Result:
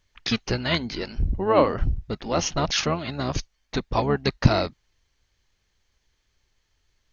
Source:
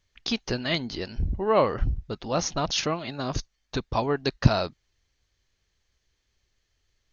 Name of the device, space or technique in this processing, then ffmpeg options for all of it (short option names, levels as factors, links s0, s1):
octave pedal: -filter_complex "[0:a]asplit=2[s0][s1];[s1]asetrate=22050,aresample=44100,atempo=2,volume=0.447[s2];[s0][s2]amix=inputs=2:normalize=0,volume=1.26"